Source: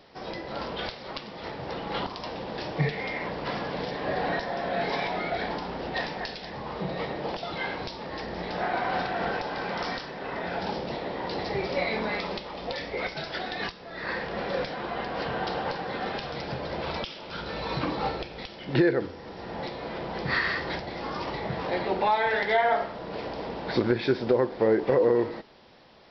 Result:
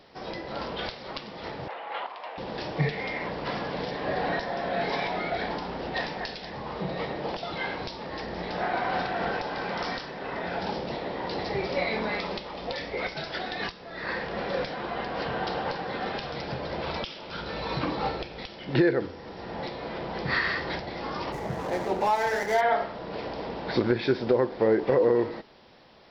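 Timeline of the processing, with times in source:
1.68–2.38 Chebyshev band-pass 660–2500 Hz
21.32–22.61 median filter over 15 samples

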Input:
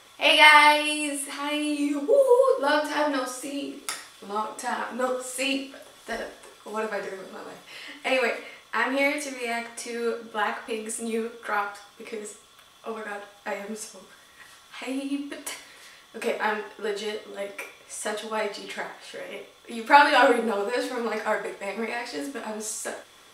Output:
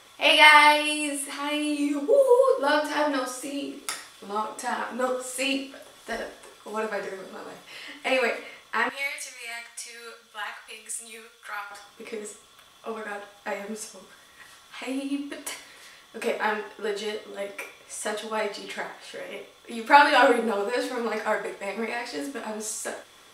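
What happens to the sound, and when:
8.89–11.71 passive tone stack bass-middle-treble 10-0-10

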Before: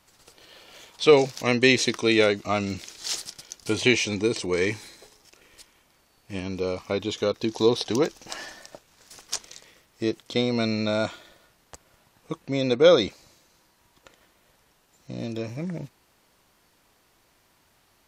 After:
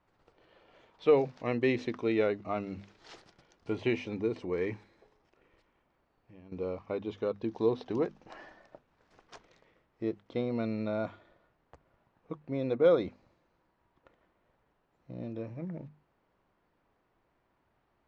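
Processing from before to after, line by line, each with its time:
4.83–6.52 compressor 2.5:1, threshold -47 dBFS
whole clip: Bessel low-pass 1300 Hz, order 2; notches 50/100/150/200/250 Hz; gain -7 dB

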